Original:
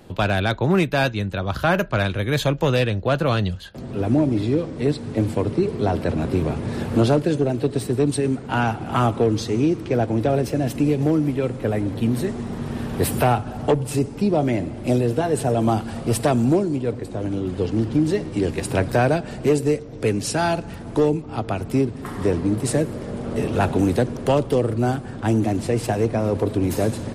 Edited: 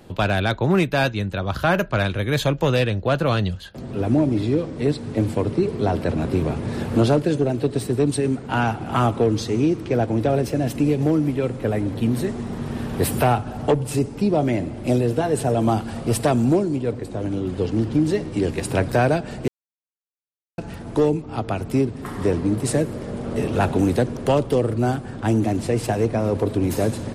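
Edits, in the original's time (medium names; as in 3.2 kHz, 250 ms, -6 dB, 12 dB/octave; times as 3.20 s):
19.48–20.58 s: mute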